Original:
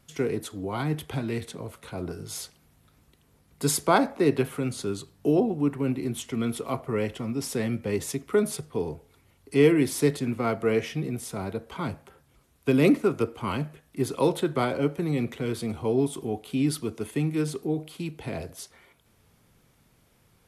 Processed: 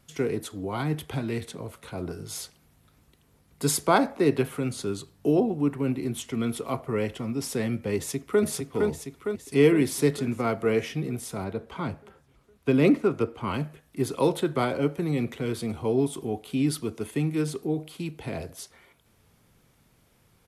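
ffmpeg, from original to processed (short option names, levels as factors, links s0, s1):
-filter_complex "[0:a]asplit=2[s0][s1];[s1]afade=t=in:st=7.96:d=0.01,afade=t=out:st=8.43:d=0.01,aecho=0:1:460|920|1380|1840|2300|2760|3220|3680|4140:0.707946|0.424767|0.25486|0.152916|0.0917498|0.0550499|0.0330299|0.019818|0.0118908[s2];[s0][s2]amix=inputs=2:normalize=0,asettb=1/sr,asplit=3[s3][s4][s5];[s3]atrim=end=11.444[s6];[s4]atrim=start=11.44:end=13.54,asetpts=PTS-STARTPTS,afade=t=in:d=0.004:c=qsin,afade=t=out:st=2.096:d=0.004:c=qsin,lowpass=f=4000:p=1[s7];[s5]atrim=start=13.536[s8];[s6][s7]acrossfade=d=0.004:c1=hsin:c2=qsin[s9];[s9][s8]acrossfade=d=0.004:c1=qsin:c2=hsin"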